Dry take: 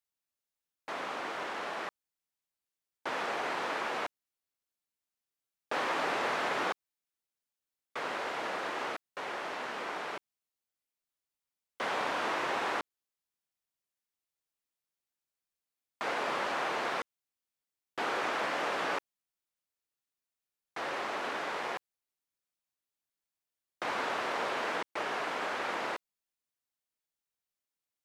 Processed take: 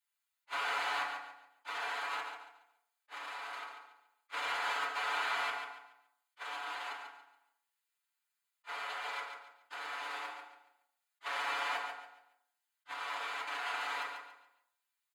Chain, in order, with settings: half-wave gain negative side -12 dB; HPF 1400 Hz 12 dB/oct; high shelf 4500 Hz -3 dB; notch 5700 Hz, Q 5.2; comb 7.1 ms, depth 73%; dynamic EQ 1800 Hz, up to -4 dB, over -55 dBFS, Q 3; negative-ratio compressor -45 dBFS, ratio -0.5; soft clip -30 dBFS, distortion -27 dB; time stretch by phase-locked vocoder 0.54×; on a send: feedback echo 0.141 s, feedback 31%, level -7 dB; on the sum: FDN reverb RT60 0.65 s, low-frequency decay 0.9×, high-frequency decay 0.3×, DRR -7 dB; attack slew limiter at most 570 dB/s; gain +2 dB

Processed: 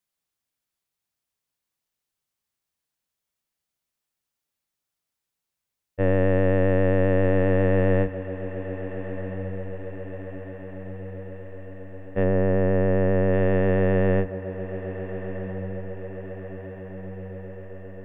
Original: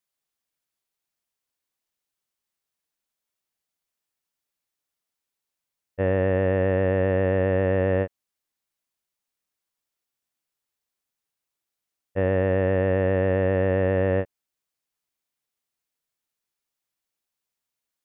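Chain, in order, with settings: octaver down 1 oct, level +2 dB; 12.23–13.32 LPF 1300 Hz -> 2100 Hz 6 dB/oct; diffused feedback echo 1.346 s, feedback 61%, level -11.5 dB

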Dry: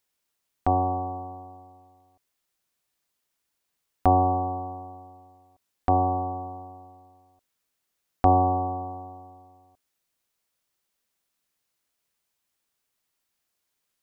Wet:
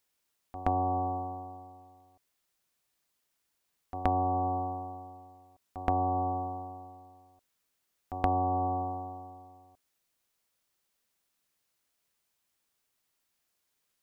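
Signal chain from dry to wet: reverse echo 0.124 s -20 dB; compressor 6:1, threshold -25 dBFS, peak gain reduction 11 dB

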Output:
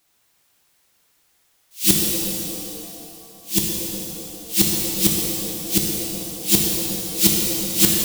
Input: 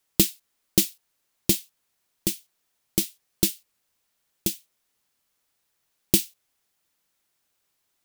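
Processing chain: whole clip reversed; soft clip -16 dBFS, distortion -8 dB; shimmer reverb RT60 2.9 s, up +7 st, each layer -8 dB, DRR -2 dB; gain +8 dB

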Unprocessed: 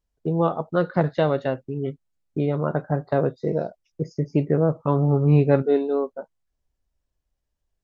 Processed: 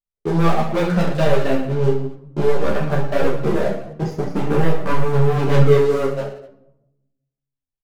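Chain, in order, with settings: notches 60/120/180/240/300/360 Hz; sample leveller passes 5; on a send: reverse bouncing-ball echo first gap 30 ms, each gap 1.25×, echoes 5; on the sum: shoebox room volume 3000 m³, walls furnished, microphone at 1.2 m; ensemble effect; gain -7 dB

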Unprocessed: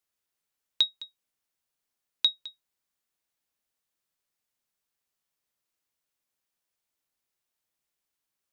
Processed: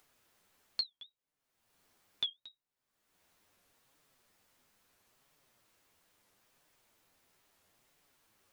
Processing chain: high shelf 2600 Hz -8.5 dB; upward compressor, threshold -47 dBFS; flange 0.75 Hz, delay 6.5 ms, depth 5.9 ms, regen +37%; record warp 45 rpm, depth 250 cents; gain -1 dB

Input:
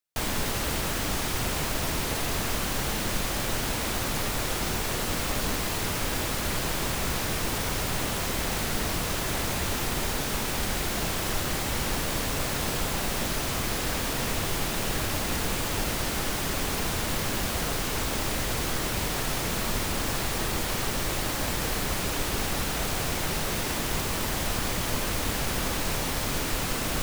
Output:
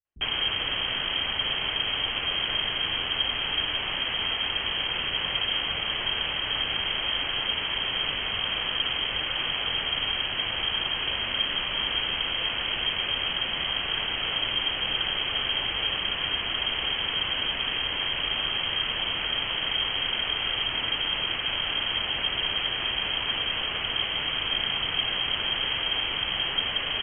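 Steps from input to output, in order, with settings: inverted band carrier 3200 Hz; low shelf 190 Hz +5 dB; bands offset in time lows, highs 50 ms, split 200 Hz

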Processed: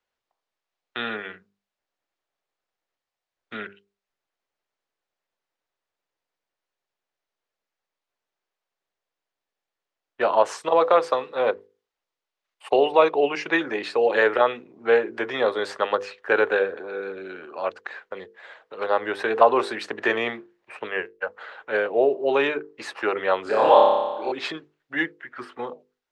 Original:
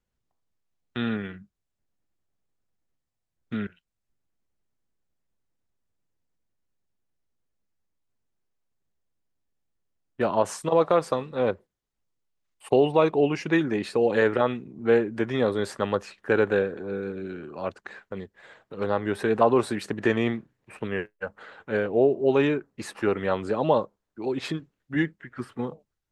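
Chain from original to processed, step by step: three-band isolator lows -22 dB, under 410 Hz, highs -15 dB, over 5500 Hz; notches 50/100/150/200/250/300/350/400/450/500 Hz; 23.43–24.32 flutter echo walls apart 5 m, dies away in 1.2 s; gain +6 dB

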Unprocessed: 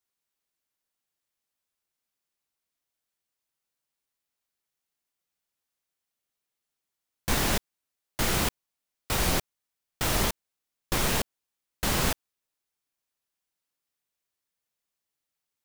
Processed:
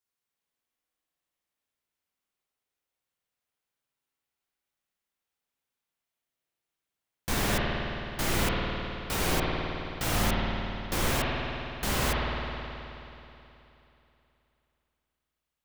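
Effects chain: spring tank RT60 3.1 s, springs 53 ms, chirp 55 ms, DRR -3.5 dB; gain -4 dB

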